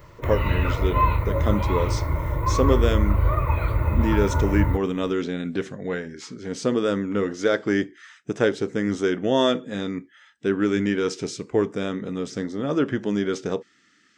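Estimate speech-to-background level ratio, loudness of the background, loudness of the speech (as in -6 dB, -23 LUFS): -2.0 dB, -23.5 LUFS, -25.5 LUFS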